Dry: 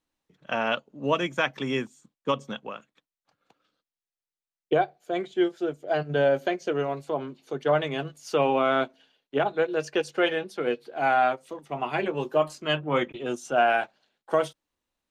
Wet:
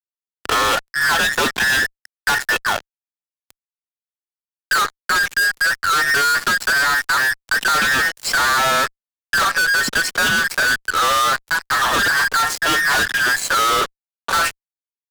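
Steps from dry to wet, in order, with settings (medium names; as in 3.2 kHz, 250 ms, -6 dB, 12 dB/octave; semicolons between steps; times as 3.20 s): every band turned upside down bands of 2 kHz; fuzz box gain 43 dB, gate -45 dBFS; three bands compressed up and down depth 40%; trim -2 dB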